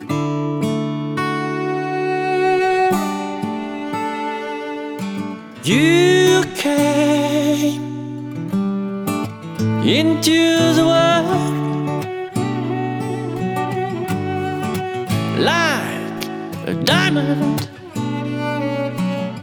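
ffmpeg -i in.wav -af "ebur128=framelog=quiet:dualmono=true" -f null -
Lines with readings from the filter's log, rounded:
Integrated loudness:
  I:         -15.6 LUFS
  Threshold: -25.7 LUFS
Loudness range:
  LRA:         5.2 LU
  Threshold: -35.4 LUFS
  LRA low:   -18.3 LUFS
  LRA high:  -13.1 LUFS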